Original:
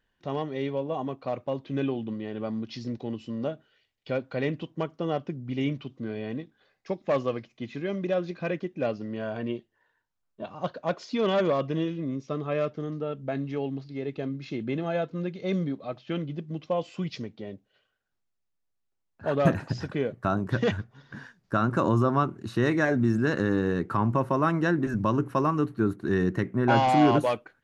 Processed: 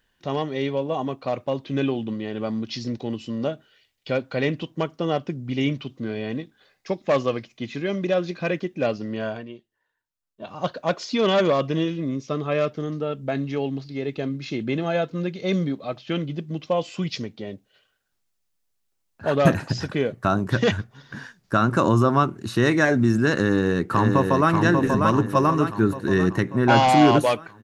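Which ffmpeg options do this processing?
-filter_complex "[0:a]asplit=2[a][b];[b]afade=t=in:st=23.34:d=0.01,afade=t=out:st=24.52:d=0.01,aecho=0:1:590|1180|1770|2360|2950|3540|4130:0.630957|0.347027|0.190865|0.104976|0.0577365|0.0317551|0.0174653[c];[a][c]amix=inputs=2:normalize=0,asplit=3[d][e][f];[d]atrim=end=9.45,asetpts=PTS-STARTPTS,afade=t=out:st=9.27:d=0.18:silence=0.237137[g];[e]atrim=start=9.45:end=10.36,asetpts=PTS-STARTPTS,volume=-12.5dB[h];[f]atrim=start=10.36,asetpts=PTS-STARTPTS,afade=t=in:d=0.18:silence=0.237137[i];[g][h][i]concat=n=3:v=0:a=1,highshelf=f=3k:g=8,volume=4.5dB"

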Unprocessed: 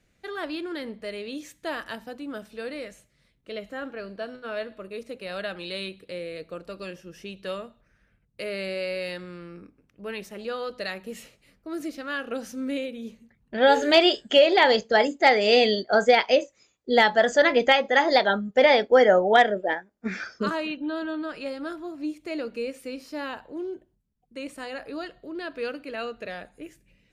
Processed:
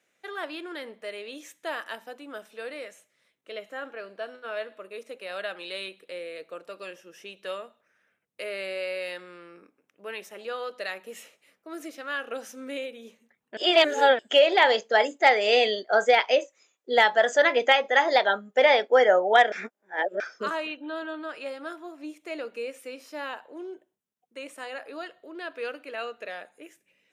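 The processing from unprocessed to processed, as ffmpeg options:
-filter_complex "[0:a]asplit=5[a][b][c][d][e];[a]atrim=end=13.572[f];[b]atrim=start=13.568:end=14.192,asetpts=PTS-STARTPTS,areverse[g];[c]atrim=start=14.188:end=19.522[h];[d]atrim=start=19.518:end=20.202,asetpts=PTS-STARTPTS,areverse[i];[e]atrim=start=20.198[j];[f][g]acrossfade=d=0.004:c1=hsin:c2=hsin[k];[k][h]acrossfade=d=0.004:c1=hsin:c2=hsin[l];[l][i]acrossfade=d=0.004:c1=hsin:c2=hsin[m];[m][j]acrossfade=d=0.004:c1=hsin:c2=hsin,highpass=460,equalizer=f=4.5k:w=5.4:g=-8"

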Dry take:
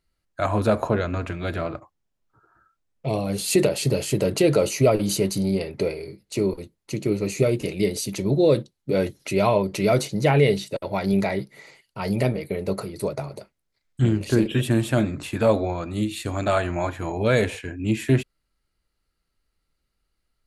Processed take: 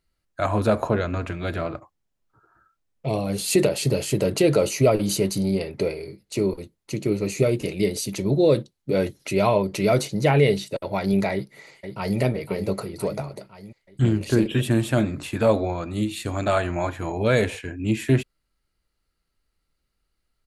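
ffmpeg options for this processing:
-filter_complex "[0:a]asplit=2[a][b];[b]afade=t=in:st=11.32:d=0.01,afade=t=out:st=12.19:d=0.01,aecho=0:1:510|1020|1530|2040|2550|3060|3570|4080:0.375837|0.225502|0.135301|0.0811809|0.0487085|0.0292251|0.0175351|0.010521[c];[a][c]amix=inputs=2:normalize=0"

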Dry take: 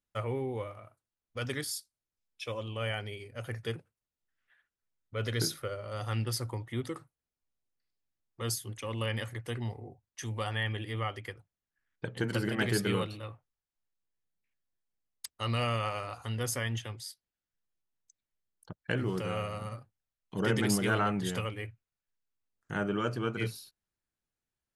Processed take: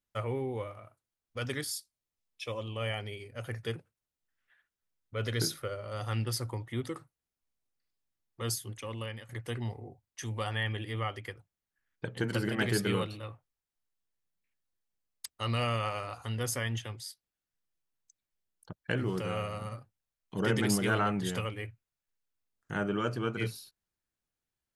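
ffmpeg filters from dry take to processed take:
-filter_complex "[0:a]asettb=1/sr,asplit=3[a][b][c];[a]atrim=end=1.764[d];[b]atrim=start=1.76:end=3.06,asetpts=PTS-STARTPTS,afade=t=in:d=0.004:c=qsin,afade=t=out:st=1.296:d=0.004:c=qsin,bandreject=f=1.5k:w=9[e];[c]atrim=start=3.056[f];[d][e]acrossfade=d=0.004:c1=hsin:c2=qsin[g];[g][f]acrossfade=d=0.004:c1=qsin:c2=hsin,asplit=2[h][i];[h]atrim=end=9.29,asetpts=PTS-STARTPTS,afade=t=out:st=8.48:d=0.81:c=qsin:silence=0.133352[j];[i]atrim=start=9.29,asetpts=PTS-STARTPTS,afade=t=in:d=0.004:c=hsin:silence=0.133352[k];[j][k]concat=n=2:v=0:a=1"

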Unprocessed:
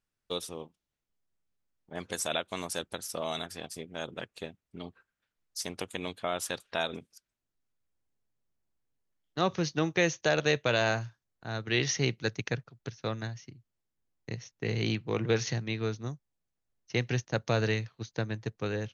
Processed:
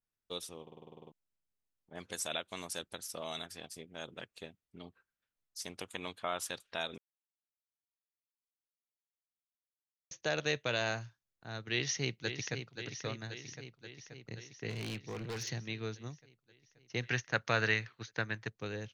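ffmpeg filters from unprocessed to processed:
-filter_complex "[0:a]asettb=1/sr,asplit=3[a][b][c];[a]atrim=end=5.844[d];[b]atrim=start=5.84:end=6.43,asetpts=PTS-STARTPTS,afade=t=in:d=0.004:c=qsin,afade=t=out:st=0.586:d=0.004:c=qsin,equalizer=f=1.1k:t=o:w=1.2:g=6.5[e];[c]atrim=start=6.426[f];[d][e]acrossfade=d=0.004:c1=hsin:c2=qsin[g];[g][f]acrossfade=d=0.004:c1=qsin:c2=hsin,asplit=2[h][i];[i]afade=t=in:st=11.72:d=0.01,afade=t=out:st=12.77:d=0.01,aecho=0:1:530|1060|1590|2120|2650|3180|3710|4240|4770|5300|5830:0.398107|0.278675|0.195073|0.136551|0.0955855|0.0669099|0.0468369|0.0327858|0.0229501|0.0160651|0.0112455[j];[h][j]amix=inputs=2:normalize=0,asplit=3[k][l][m];[k]afade=t=out:st=14.69:d=0.02[n];[l]asoftclip=type=hard:threshold=-29.5dB,afade=t=in:st=14.69:d=0.02,afade=t=out:st=15.5:d=0.02[o];[m]afade=t=in:st=15.5:d=0.02[p];[n][o][p]amix=inputs=3:normalize=0,asettb=1/sr,asplit=3[q][r][s];[q]atrim=end=17.034[t];[r]atrim=start=17.03:end=18.48,asetpts=PTS-STARTPTS,afade=t=in:d=0.004:c=qsin,afade=t=out:st=1.446:d=0.004:c=qsin,equalizer=f=1.6k:w=0.8:g=11.5[u];[s]atrim=start=18.476[v];[t][u]acrossfade=d=0.004:c1=hsin:c2=qsin[w];[w][v]acrossfade=d=0.004:c1=qsin:c2=hsin,asplit=13[x][y][z][aa][ab][ac][ad][ae][af][ag][ah][ai][aj];[x]atrim=end=0.672[ak];[y]atrim=start=0.618:end=0.672[al];[z]atrim=start=0.618:end=0.672[am];[aa]atrim=start=0.618:end=0.672[an];[ab]atrim=start=0.618:end=0.672[ao];[ac]atrim=start=0.618:end=0.672[ap];[ad]atrim=start=0.618:end=0.672[aq];[ae]atrim=start=0.618:end=0.672[ar];[af]atrim=start=0.618:end=0.672[as];[ag]atrim=start=0.618:end=0.672[at];[ah]atrim=start=1.118:end=6.98,asetpts=PTS-STARTPTS,afade=t=out:st=5.858:d=0.004:c=hsin[au];[ai]atrim=start=6.98:end=10.11,asetpts=PTS-STARTPTS,volume=0[av];[aj]atrim=start=10.11,asetpts=PTS-STARTPTS,afade=t=in:d=0.004:c=hsin[aw];[ak][al]acrossfade=d=0.004:c1=hsin:c2=hsin[ax];[ax][am]acrossfade=d=0.004:c1=hsin:c2=hsin[ay];[ay][an]acrossfade=d=0.004:c1=hsin:c2=hsin[az];[az][ao]acrossfade=d=0.004:c1=hsin:c2=hsin[ba];[ba][ap]acrossfade=d=0.004:c1=hsin:c2=hsin[bb];[bb][aq]acrossfade=d=0.004:c1=hsin:c2=hsin[bc];[bc][ar]acrossfade=d=0.004:c1=hsin:c2=hsin[bd];[bd][as]acrossfade=d=0.004:c1=hsin:c2=hsin[be];[be][at]acrossfade=d=0.004:c1=hsin:c2=hsin[bf];[au][av][aw]concat=n=3:v=0:a=1[bg];[bf][bg]acrossfade=d=0.004:c1=hsin:c2=hsin,adynamicequalizer=threshold=0.00631:dfrequency=1600:dqfactor=0.7:tfrequency=1600:tqfactor=0.7:attack=5:release=100:ratio=0.375:range=2:mode=boostabove:tftype=highshelf,volume=-8dB"

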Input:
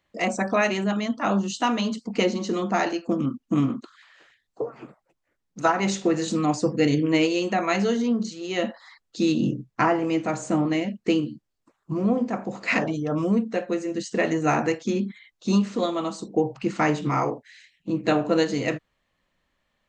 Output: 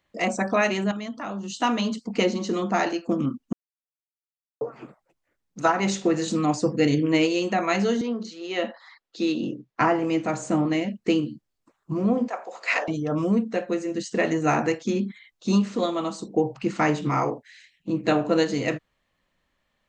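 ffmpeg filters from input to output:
-filter_complex "[0:a]asettb=1/sr,asplit=3[a][b][c];[a]atrim=end=0.914[d];[b]atrim=start=0.91:end=1.59,asetpts=PTS-STARTPTS,afade=t=in:d=0.004:c=qsin,afade=t=out:st=0.676:d=0.004:c=qsin,acompressor=threshold=-30dB:ratio=4:attack=3.2:release=140:knee=1:detection=peak[e];[c]atrim=start=1.586[f];[d][e]acrossfade=d=0.004:c1=hsin:c2=qsin[g];[g][f]acrossfade=d=0.004:c1=qsin:c2=hsin,asettb=1/sr,asplit=3[h][i][j];[h]atrim=end=8.014[k];[i]atrim=start=8.01:end=9.81,asetpts=PTS-STARTPTS,afade=t=in:d=0.004:c=qsin,afade=t=out:st=1.796:d=0.004:c=qsin,acrossover=split=260 5400:gain=0.178 1 0.224[l][m][n];[l][m][n]amix=inputs=3:normalize=0[o];[j]atrim=start=9.806[p];[k][o]acrossfade=d=0.004:c1=hsin:c2=qsin[q];[q][p]acrossfade=d=0.004:c1=qsin:c2=hsin,asettb=1/sr,asplit=3[r][s][t];[r]atrim=end=12.284[u];[s]atrim=start=12.28:end=12.88,asetpts=PTS-STARTPTS,afade=t=in:d=0.004:c=qsin,afade=t=out:st=0.596:d=0.004:c=qsin,highpass=f=510:w=0.5412,highpass=f=510:w=1.3066[v];[t]atrim=start=12.876[w];[u][v]acrossfade=d=0.004:c1=hsin:c2=qsin[x];[x][w]acrossfade=d=0.004:c1=qsin:c2=hsin,asplit=3[y][z][aa];[y]atrim=end=3.53,asetpts=PTS-STARTPTS,afade=t=out:st=3.526:d=0.004:c=hsin[ab];[z]atrim=start=3.53:end=4.61,asetpts=PTS-STARTPTS,volume=0[ac];[aa]atrim=start=4.61,asetpts=PTS-STARTPTS,afade=t=in:d=0.004:c=hsin[ad];[ab][ac][ad]concat=n=3:v=0:a=1"

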